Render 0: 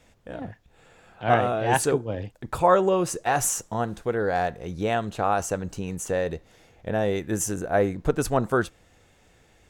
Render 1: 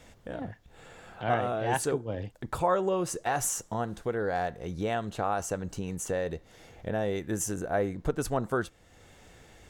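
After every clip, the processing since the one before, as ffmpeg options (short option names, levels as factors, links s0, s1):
-af "bandreject=f=2500:w=20,acompressor=threshold=0.00355:ratio=1.5,volume=1.68"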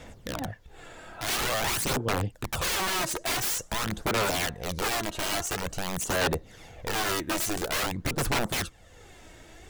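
-af "aeval=exprs='(mod(23.7*val(0)+1,2)-1)/23.7':c=same,aphaser=in_gain=1:out_gain=1:delay=3.2:decay=0.45:speed=0.48:type=sinusoidal,volume=1.5"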